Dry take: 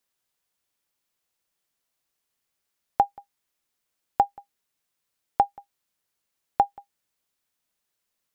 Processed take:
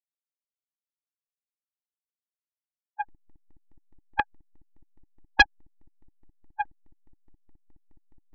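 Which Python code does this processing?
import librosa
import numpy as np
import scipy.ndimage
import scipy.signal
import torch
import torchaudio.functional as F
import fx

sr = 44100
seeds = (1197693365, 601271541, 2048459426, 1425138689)

y = fx.lower_of_two(x, sr, delay_ms=5.7)
y = scipy.signal.sosfilt(scipy.signal.butter(2, 2600.0, 'lowpass', fs=sr, output='sos'), y)
y = fx.tilt_eq(y, sr, slope=4.0)
y = fx.level_steps(y, sr, step_db=23)
y = fx.backlash(y, sr, play_db=-29.5)
y = fx.spec_topn(y, sr, count=4)
y = fx.volume_shaper(y, sr, bpm=143, per_beat=2, depth_db=-19, release_ms=145.0, shape='slow start')
y = fx.small_body(y, sr, hz=(310.0, 850.0, 1900.0), ring_ms=25, db=17)
y = fx.doppler_dist(y, sr, depth_ms=0.42)
y = y * 10.0 ** (6.0 / 20.0)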